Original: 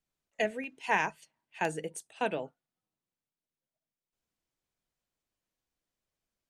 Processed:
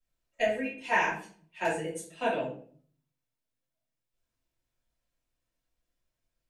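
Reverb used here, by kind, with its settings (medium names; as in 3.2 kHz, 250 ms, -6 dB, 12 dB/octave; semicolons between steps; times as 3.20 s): simulated room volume 45 m³, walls mixed, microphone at 2.7 m; trim -10.5 dB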